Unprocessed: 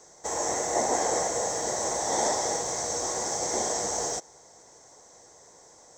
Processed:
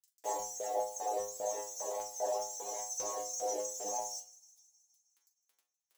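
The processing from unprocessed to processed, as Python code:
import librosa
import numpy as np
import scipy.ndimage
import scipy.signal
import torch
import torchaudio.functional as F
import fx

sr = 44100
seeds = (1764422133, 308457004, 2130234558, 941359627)

p1 = fx.envelope_sharpen(x, sr, power=2.0)
p2 = scipy.signal.sosfilt(scipy.signal.butter(2, 11000.0, 'lowpass', fs=sr, output='sos'), p1)
p3 = fx.peak_eq(p2, sr, hz=76.0, db=9.5, octaves=1.8)
p4 = fx.rider(p3, sr, range_db=3, speed_s=0.5)
p5 = p3 + (p4 * librosa.db_to_amplitude(0.0))
p6 = fx.quant_dither(p5, sr, seeds[0], bits=6, dither='none')
p7 = fx.dereverb_blind(p6, sr, rt60_s=1.2)
p8 = fx.filter_lfo_highpass(p7, sr, shape='square', hz=2.5, low_hz=410.0, high_hz=5800.0, q=1.0)
p9 = fx.stiff_resonator(p8, sr, f0_hz=100.0, decay_s=0.49, stiffness=0.002)
p10 = fx.vibrato(p9, sr, rate_hz=3.3, depth_cents=7.2)
p11 = fx.doubler(p10, sr, ms=41.0, db=-13.0)
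y = p11 + fx.echo_wet_highpass(p11, sr, ms=157, feedback_pct=66, hz=4000.0, wet_db=-18.0, dry=0)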